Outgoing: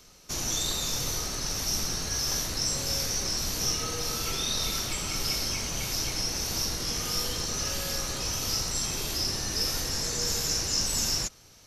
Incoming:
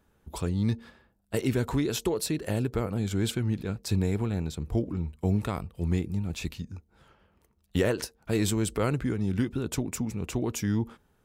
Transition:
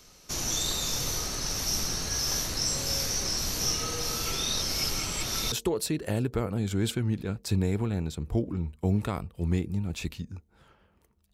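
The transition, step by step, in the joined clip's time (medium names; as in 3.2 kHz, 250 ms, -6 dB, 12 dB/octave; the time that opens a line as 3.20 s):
outgoing
4.62–5.52 s: reverse
5.52 s: go over to incoming from 1.92 s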